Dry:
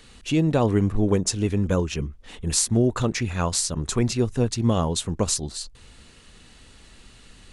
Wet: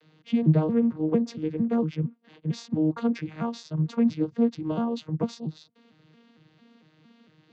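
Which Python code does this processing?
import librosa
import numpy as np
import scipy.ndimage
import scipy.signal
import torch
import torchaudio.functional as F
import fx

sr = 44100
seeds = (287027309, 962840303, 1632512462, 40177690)

y = fx.vocoder_arp(x, sr, chord='bare fifth', root=51, every_ms=227)
y = scipy.signal.sosfilt(scipy.signal.butter(4, 5200.0, 'lowpass', fs=sr, output='sos'), y)
y = F.gain(torch.from_numpy(y), -1.5).numpy()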